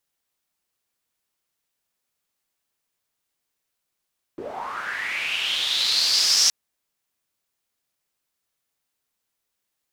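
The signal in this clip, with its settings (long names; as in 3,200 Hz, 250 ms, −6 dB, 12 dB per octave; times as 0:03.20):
filter sweep on noise pink, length 2.12 s bandpass, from 320 Hz, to 5,600 Hz, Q 6.1, linear, gain ramp +17 dB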